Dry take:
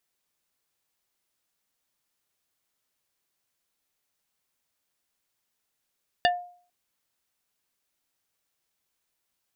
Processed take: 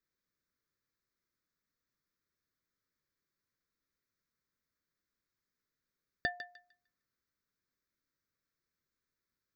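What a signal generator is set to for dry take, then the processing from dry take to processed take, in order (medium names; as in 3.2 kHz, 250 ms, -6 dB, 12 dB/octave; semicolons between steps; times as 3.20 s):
wood hit plate, lowest mode 710 Hz, decay 0.48 s, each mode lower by 2 dB, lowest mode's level -17 dB
treble shelf 2.2 kHz -11.5 dB; static phaser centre 2.9 kHz, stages 6; on a send: thinning echo 151 ms, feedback 26%, high-pass 1.1 kHz, level -10 dB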